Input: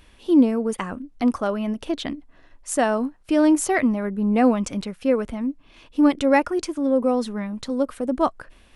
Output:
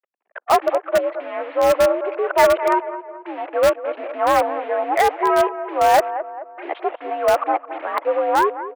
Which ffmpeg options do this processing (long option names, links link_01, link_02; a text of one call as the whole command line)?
ffmpeg -i in.wav -filter_complex "[0:a]areverse,afftdn=noise_reduction=22:noise_floor=-39,tiltshelf=frequency=970:gain=9,acontrast=68,aresample=16000,acrusher=bits=4:mix=0:aa=0.5,aresample=44100,volume=4.5dB,asoftclip=hard,volume=-4.5dB,highpass=frequency=520:width_type=q:width=0.5412,highpass=frequency=520:width_type=q:width=1.307,lowpass=frequency=2500:width_type=q:width=0.5176,lowpass=frequency=2500:width_type=q:width=0.7071,lowpass=frequency=2500:width_type=q:width=1.932,afreqshift=63,asplit=2[link_01][link_02];[link_02]adelay=216,lowpass=frequency=1700:poles=1,volume=-12.5dB,asplit=2[link_03][link_04];[link_04]adelay=216,lowpass=frequency=1700:poles=1,volume=0.48,asplit=2[link_05][link_06];[link_06]adelay=216,lowpass=frequency=1700:poles=1,volume=0.48,asplit=2[link_07][link_08];[link_08]adelay=216,lowpass=frequency=1700:poles=1,volume=0.48,asplit=2[link_09][link_10];[link_10]adelay=216,lowpass=frequency=1700:poles=1,volume=0.48[link_11];[link_01][link_03][link_05][link_07][link_09][link_11]amix=inputs=6:normalize=0,asplit=2[link_12][link_13];[link_13]aeval=exprs='(mod(3.35*val(0)+1,2)-1)/3.35':channel_layout=same,volume=-11dB[link_14];[link_12][link_14]amix=inputs=2:normalize=0" out.wav